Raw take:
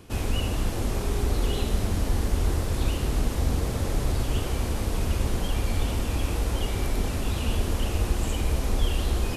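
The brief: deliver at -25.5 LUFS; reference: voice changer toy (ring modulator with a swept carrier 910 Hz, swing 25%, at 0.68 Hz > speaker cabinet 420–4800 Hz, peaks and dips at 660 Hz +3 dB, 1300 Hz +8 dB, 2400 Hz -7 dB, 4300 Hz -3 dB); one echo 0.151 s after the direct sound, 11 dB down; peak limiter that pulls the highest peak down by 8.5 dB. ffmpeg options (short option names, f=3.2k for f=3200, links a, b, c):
-af "alimiter=limit=-19.5dB:level=0:latency=1,aecho=1:1:151:0.282,aeval=exprs='val(0)*sin(2*PI*910*n/s+910*0.25/0.68*sin(2*PI*0.68*n/s))':c=same,highpass=420,equalizer=f=660:t=q:w=4:g=3,equalizer=f=1.3k:t=q:w=4:g=8,equalizer=f=2.4k:t=q:w=4:g=-7,equalizer=f=4.3k:t=q:w=4:g=-3,lowpass=f=4.8k:w=0.5412,lowpass=f=4.8k:w=1.3066,volume=2dB"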